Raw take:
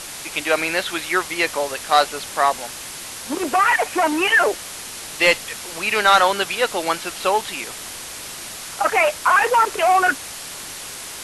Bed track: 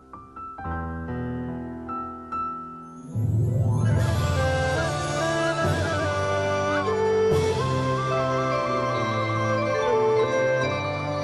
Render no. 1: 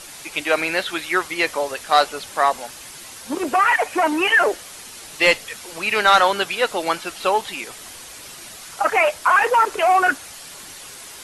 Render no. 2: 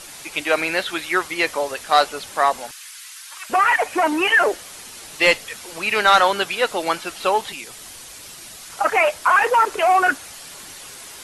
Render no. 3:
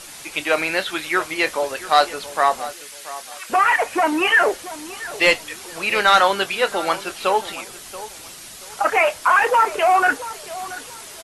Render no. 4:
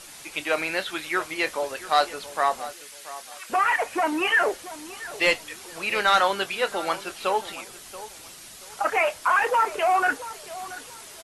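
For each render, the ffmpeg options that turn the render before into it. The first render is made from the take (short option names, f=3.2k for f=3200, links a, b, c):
-af "afftdn=nr=7:nf=-34"
-filter_complex "[0:a]asettb=1/sr,asplit=3[a][b][c];[a]atrim=end=2.714[d];[b]atrim=start=2.71:end=3.5,asetpts=PTS-STARTPTS,afade=t=in:d=0.004:c=qsin,afade=t=out:st=0.786:d=0.004:c=qsin,highpass=f=1.3k:w=0.5412,highpass=f=1.3k:w=1.3066[e];[c]atrim=start=3.496[f];[d][e]acrossfade=d=0.004:c1=hsin:c2=qsin[g];[g][f]acrossfade=d=0.004:c1=qsin:c2=hsin,asettb=1/sr,asplit=3[h][i][j];[h]atrim=end=7.524[k];[i]atrim=start=7.52:end=8.7,asetpts=PTS-STARTPTS,afade=t=in:d=0.004:c=qsin,afade=t=out:st=1.176:d=0.004:c=qsin,acrossover=split=200|3000[l][m][n];[m]acompressor=threshold=-49dB:ratio=1.5:attack=3.2:release=140:knee=2.83:detection=peak[o];[l][o][n]amix=inputs=3:normalize=0[p];[j]atrim=start=8.696[q];[k][p]acrossfade=d=0.004:c1=hsin:c2=qsin[r];[r][q]acrossfade=d=0.004:c1=qsin:c2=hsin"
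-filter_complex "[0:a]asplit=2[a][b];[b]adelay=26,volume=-14dB[c];[a][c]amix=inputs=2:normalize=0,asplit=2[d][e];[e]adelay=680,lowpass=f=2k:p=1,volume=-15dB,asplit=2[f][g];[g]adelay=680,lowpass=f=2k:p=1,volume=0.3,asplit=2[h][i];[i]adelay=680,lowpass=f=2k:p=1,volume=0.3[j];[d][f][h][j]amix=inputs=4:normalize=0"
-af "volume=-5.5dB"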